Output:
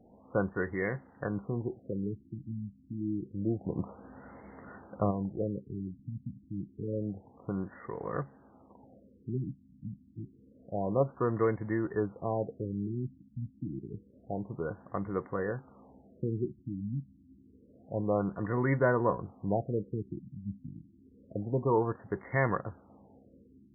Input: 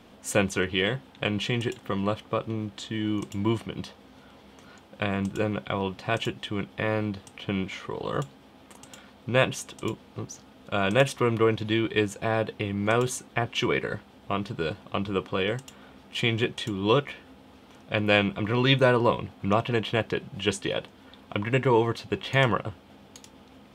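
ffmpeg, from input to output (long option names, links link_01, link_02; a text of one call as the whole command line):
ffmpeg -i in.wav -filter_complex "[0:a]asplit=3[link_01][link_02][link_03];[link_01]afade=type=out:start_time=3.63:duration=0.02[link_04];[link_02]acontrast=88,afade=type=in:start_time=3.63:duration=0.02,afade=type=out:start_time=5.1:duration=0.02[link_05];[link_03]afade=type=in:start_time=5.1:duration=0.02[link_06];[link_04][link_05][link_06]amix=inputs=3:normalize=0,afftfilt=real='re*lt(b*sr/1024,290*pow(2200/290,0.5+0.5*sin(2*PI*0.28*pts/sr)))':imag='im*lt(b*sr/1024,290*pow(2200/290,0.5+0.5*sin(2*PI*0.28*pts/sr)))':win_size=1024:overlap=0.75,volume=-5.5dB" out.wav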